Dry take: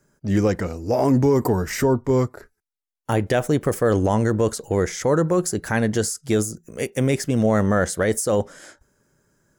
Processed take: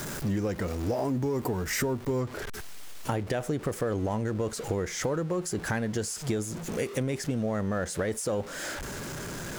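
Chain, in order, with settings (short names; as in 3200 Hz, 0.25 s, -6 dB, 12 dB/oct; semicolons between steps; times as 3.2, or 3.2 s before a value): zero-crossing step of -30.5 dBFS; compressor 6:1, threshold -27 dBFS, peak gain reduction 13 dB; high shelf 9800 Hz +2 dB, from 2.21 s -7.5 dB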